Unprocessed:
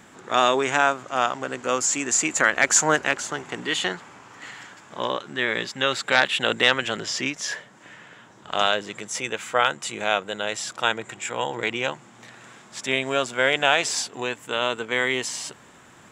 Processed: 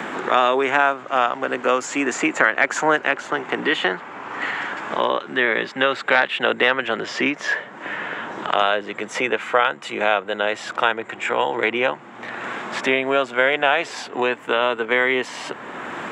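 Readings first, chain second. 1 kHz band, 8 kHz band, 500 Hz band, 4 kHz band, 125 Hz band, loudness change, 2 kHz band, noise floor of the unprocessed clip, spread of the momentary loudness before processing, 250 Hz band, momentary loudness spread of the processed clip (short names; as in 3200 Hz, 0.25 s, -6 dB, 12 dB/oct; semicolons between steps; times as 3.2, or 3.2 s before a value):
+4.5 dB, -11.5 dB, +5.0 dB, -1.5 dB, -2.5 dB, +2.5 dB, +4.0 dB, -50 dBFS, 12 LU, +5.0 dB, 11 LU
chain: three-band isolator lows -13 dB, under 220 Hz, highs -20 dB, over 3000 Hz; three-band squash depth 70%; gain +5 dB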